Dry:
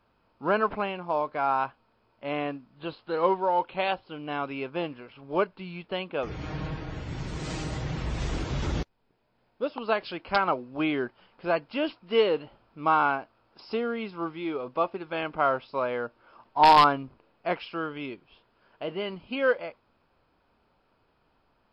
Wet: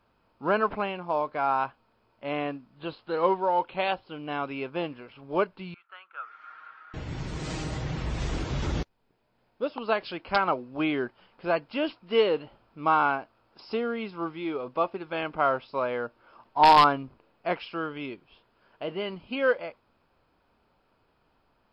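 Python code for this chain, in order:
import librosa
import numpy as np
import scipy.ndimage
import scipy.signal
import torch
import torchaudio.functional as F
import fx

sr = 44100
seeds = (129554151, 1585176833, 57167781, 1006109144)

y = fx.ladder_bandpass(x, sr, hz=1400.0, resonance_pct=85, at=(5.74, 6.94))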